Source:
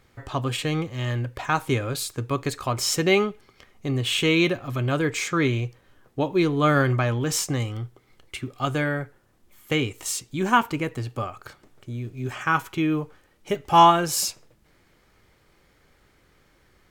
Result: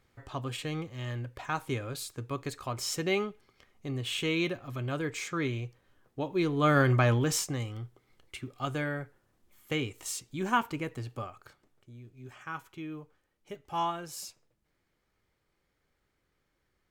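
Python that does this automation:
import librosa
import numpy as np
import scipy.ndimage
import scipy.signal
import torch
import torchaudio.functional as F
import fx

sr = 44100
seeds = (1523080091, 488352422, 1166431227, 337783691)

y = fx.gain(x, sr, db=fx.line((6.21, -9.5), (7.13, 0.0), (7.51, -8.0), (11.13, -8.0), (11.9, -17.0)))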